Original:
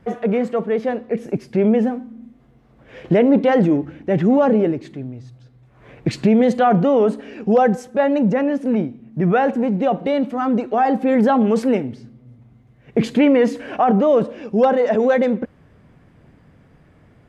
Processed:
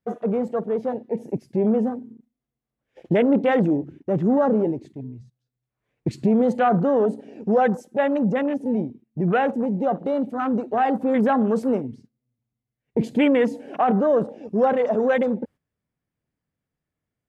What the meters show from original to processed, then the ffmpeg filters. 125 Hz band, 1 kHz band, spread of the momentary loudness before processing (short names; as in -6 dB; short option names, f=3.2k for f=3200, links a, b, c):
-4.5 dB, -3.5 dB, 10 LU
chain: -af "crystalizer=i=3.5:c=0,agate=range=-13dB:threshold=-37dB:ratio=16:detection=peak,afwtdn=0.0501,volume=-4.5dB"